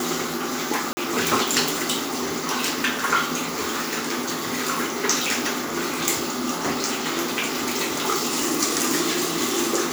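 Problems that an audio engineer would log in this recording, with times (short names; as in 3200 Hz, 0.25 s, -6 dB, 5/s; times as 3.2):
0.93–0.97 gap 40 ms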